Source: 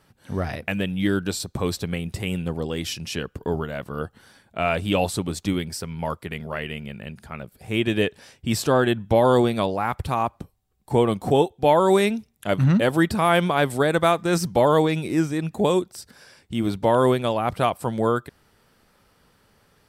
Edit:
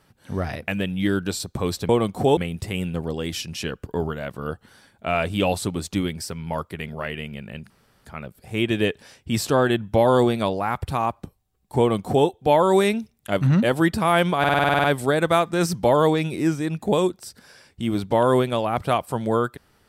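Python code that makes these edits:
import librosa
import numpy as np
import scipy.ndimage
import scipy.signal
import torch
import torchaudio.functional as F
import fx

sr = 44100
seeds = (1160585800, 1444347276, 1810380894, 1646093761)

y = fx.edit(x, sr, fx.insert_room_tone(at_s=7.22, length_s=0.35),
    fx.duplicate(start_s=10.96, length_s=0.48, to_s=1.89),
    fx.stutter(start_s=13.56, slice_s=0.05, count=10), tone=tone)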